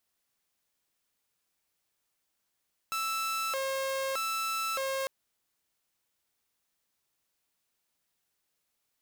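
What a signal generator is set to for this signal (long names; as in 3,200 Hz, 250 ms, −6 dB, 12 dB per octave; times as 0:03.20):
siren hi-lo 537–1,320 Hz 0.81 per second saw −27.5 dBFS 2.15 s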